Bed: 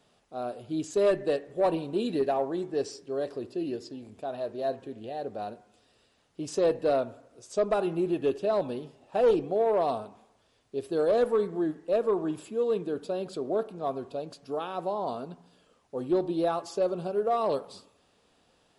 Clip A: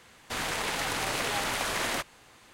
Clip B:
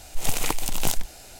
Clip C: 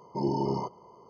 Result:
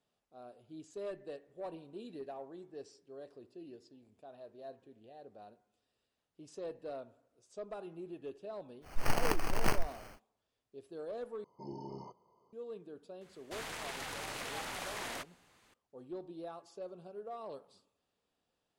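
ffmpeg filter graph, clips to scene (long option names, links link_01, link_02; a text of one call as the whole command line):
ffmpeg -i bed.wav -i cue0.wav -i cue1.wav -i cue2.wav -filter_complex "[0:a]volume=-18dB[link_01];[2:a]acrusher=samples=12:mix=1:aa=0.000001[link_02];[link_01]asplit=2[link_03][link_04];[link_03]atrim=end=11.444[link_05];[3:a]atrim=end=1.09,asetpts=PTS-STARTPTS,volume=-17dB[link_06];[link_04]atrim=start=12.526[link_07];[link_02]atrim=end=1.39,asetpts=PTS-STARTPTS,volume=-6dB,afade=type=in:duration=0.1,afade=type=out:start_time=1.29:duration=0.1,adelay=8810[link_08];[1:a]atrim=end=2.53,asetpts=PTS-STARTPTS,volume=-11.5dB,afade=type=in:duration=0.004:curve=hsin,afade=type=out:start_time=2.526:duration=0.004:curve=hsin,adelay=13210[link_09];[link_05][link_06]acrossfade=duration=0.004:curve1=hsin:curve2=hsin[link_10];[link_10][link_07]acrossfade=duration=0.004:curve1=hsin:curve2=hsin[link_11];[link_11][link_08][link_09]amix=inputs=3:normalize=0" out.wav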